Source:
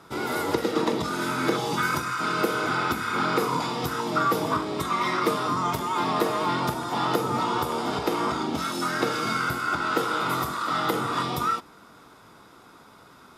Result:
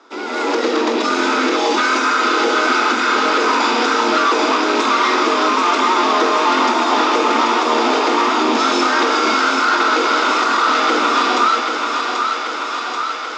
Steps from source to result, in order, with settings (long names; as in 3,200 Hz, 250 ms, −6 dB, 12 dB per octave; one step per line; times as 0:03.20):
loose part that buzzes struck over −35 dBFS, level −28 dBFS
hard clipping −24 dBFS, distortion −10 dB
automatic gain control gain up to 13.5 dB
Butterworth high-pass 230 Hz 96 dB per octave
downward compressor, threshold −16 dBFS, peak gain reduction 6.5 dB
Butterworth low-pass 7,000 Hz 48 dB per octave
on a send: feedback echo with a high-pass in the loop 785 ms, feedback 74%, high-pass 340 Hz, level −5 dB
on the sum: level +2.5 dB